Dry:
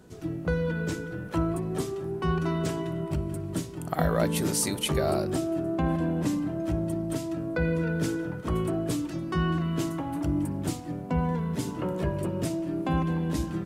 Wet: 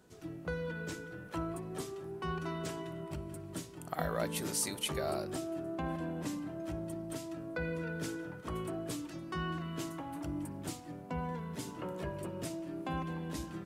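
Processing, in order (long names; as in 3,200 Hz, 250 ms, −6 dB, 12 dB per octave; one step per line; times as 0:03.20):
low-shelf EQ 430 Hz −7.5 dB
level −6 dB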